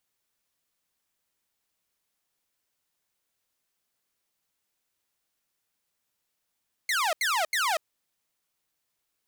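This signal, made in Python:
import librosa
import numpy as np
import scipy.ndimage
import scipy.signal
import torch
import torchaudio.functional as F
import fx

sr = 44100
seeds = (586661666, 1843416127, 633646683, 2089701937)

y = fx.laser_zaps(sr, level_db=-21.0, start_hz=2200.0, end_hz=600.0, length_s=0.24, wave='saw', shots=3, gap_s=0.08)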